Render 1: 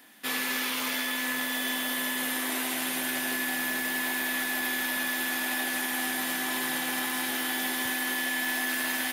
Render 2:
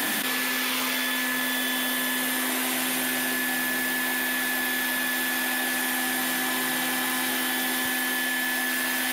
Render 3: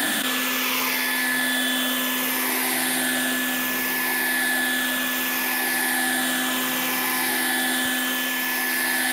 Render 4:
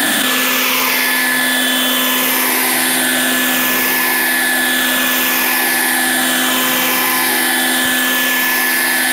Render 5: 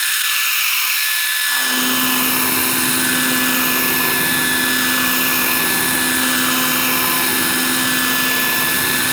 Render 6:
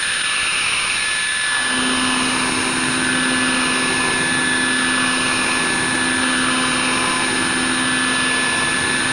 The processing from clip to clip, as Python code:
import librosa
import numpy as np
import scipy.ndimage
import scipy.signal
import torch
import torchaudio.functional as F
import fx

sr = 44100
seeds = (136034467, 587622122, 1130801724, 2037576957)

y1 = fx.env_flatten(x, sr, amount_pct=100)
y1 = y1 * 10.0 ** (2.0 / 20.0)
y2 = fx.spec_ripple(y1, sr, per_octave=0.81, drift_hz=-0.65, depth_db=6)
y2 = y2 * 10.0 ** (2.5 / 20.0)
y3 = fx.room_flutter(y2, sr, wall_m=10.4, rt60_s=0.33)
y3 = fx.env_flatten(y3, sr, amount_pct=100)
y3 = y3 * 10.0 ** (7.5 / 20.0)
y4 = fx.lower_of_two(y3, sr, delay_ms=0.74)
y4 = fx.filter_sweep_highpass(y4, sr, from_hz=1800.0, to_hz=110.0, start_s=1.43, end_s=1.93, q=0.93)
y5 = fx.pwm(y4, sr, carrier_hz=9300.0)